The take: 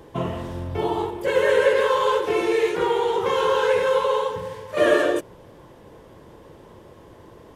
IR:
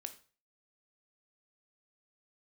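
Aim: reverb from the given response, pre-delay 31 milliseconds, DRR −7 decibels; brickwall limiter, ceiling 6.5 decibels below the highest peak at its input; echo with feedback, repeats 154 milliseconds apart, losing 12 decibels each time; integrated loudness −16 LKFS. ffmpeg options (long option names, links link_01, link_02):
-filter_complex "[0:a]alimiter=limit=-13dB:level=0:latency=1,aecho=1:1:154|308|462:0.251|0.0628|0.0157,asplit=2[link_01][link_02];[1:a]atrim=start_sample=2205,adelay=31[link_03];[link_02][link_03]afir=irnorm=-1:irlink=0,volume=10.5dB[link_04];[link_01][link_04]amix=inputs=2:normalize=0,volume=-0.5dB"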